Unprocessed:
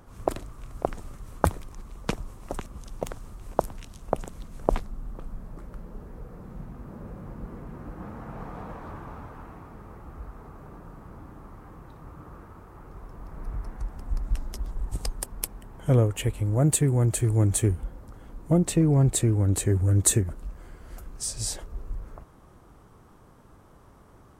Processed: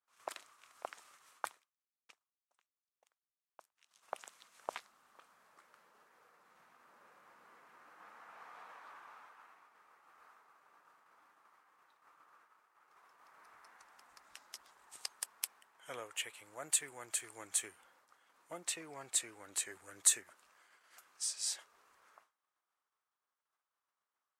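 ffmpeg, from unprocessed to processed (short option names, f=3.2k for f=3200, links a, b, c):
-filter_complex "[0:a]asplit=3[a][b][c];[a]atrim=end=1.62,asetpts=PTS-STARTPTS,afade=t=out:st=1.3:d=0.32:silence=0.141254[d];[b]atrim=start=1.62:end=3.71,asetpts=PTS-STARTPTS,volume=-17dB[e];[c]atrim=start=3.71,asetpts=PTS-STARTPTS,afade=t=in:d=0.32:silence=0.141254[f];[d][e][f]concat=n=3:v=0:a=1,agate=range=-33dB:threshold=-39dB:ratio=3:detection=peak,highpass=1.5k,highshelf=f=11k:g=-11,volume=-3dB"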